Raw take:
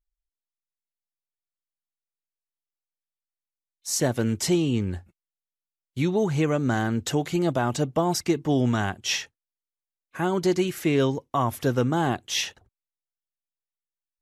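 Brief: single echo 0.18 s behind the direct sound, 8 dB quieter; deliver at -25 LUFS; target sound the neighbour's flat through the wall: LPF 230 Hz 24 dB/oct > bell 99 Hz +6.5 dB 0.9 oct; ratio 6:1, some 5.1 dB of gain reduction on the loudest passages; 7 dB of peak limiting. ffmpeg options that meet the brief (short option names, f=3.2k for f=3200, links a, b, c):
-af "acompressor=threshold=-23dB:ratio=6,alimiter=limit=-22dB:level=0:latency=1,lowpass=f=230:w=0.5412,lowpass=f=230:w=1.3066,equalizer=f=99:t=o:w=0.9:g=6.5,aecho=1:1:180:0.398,volume=8.5dB"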